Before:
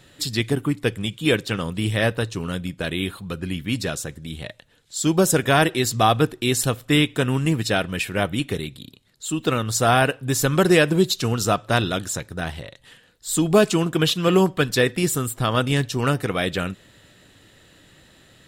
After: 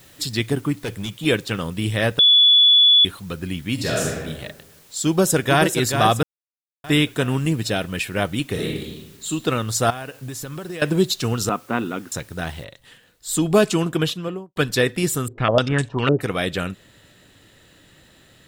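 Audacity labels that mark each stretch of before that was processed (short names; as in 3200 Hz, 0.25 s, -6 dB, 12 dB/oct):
0.780000	1.250000	hard clip -23.5 dBFS
2.190000	3.050000	bleep 3430 Hz -9.5 dBFS
3.740000	4.190000	reverb throw, RT60 1.2 s, DRR -4.5 dB
5.070000	5.640000	echo throw 0.43 s, feedback 45%, level -6.5 dB
6.230000	6.840000	mute
7.380000	7.820000	dynamic EQ 1300 Hz, up to -5 dB, over -34 dBFS, Q 0.78
8.520000	9.260000	reverb throw, RT60 0.97 s, DRR -4 dB
9.900000	10.820000	compressor 10:1, threshold -28 dBFS
11.490000	12.120000	speaker cabinet 230–2300 Hz, peaks and dips at 240 Hz +7 dB, 620 Hz -10 dB, 1700 Hz -7 dB
12.640000	12.640000	noise floor step -52 dB -69 dB
13.890000	14.560000	studio fade out
15.280000	16.210000	stepped low-pass 9.9 Hz 410–7900 Hz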